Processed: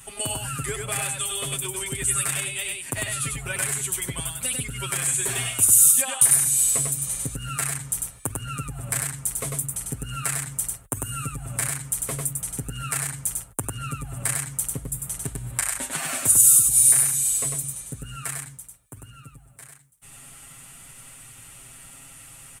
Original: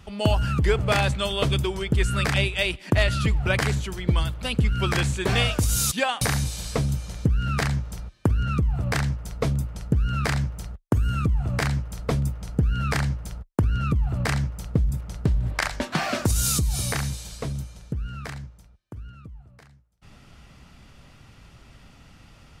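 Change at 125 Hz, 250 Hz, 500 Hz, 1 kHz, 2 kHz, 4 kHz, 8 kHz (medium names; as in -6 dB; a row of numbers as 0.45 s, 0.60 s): -10.0 dB, -10.5 dB, -9.5 dB, -5.5 dB, -4.0 dB, -4.0 dB, +14.0 dB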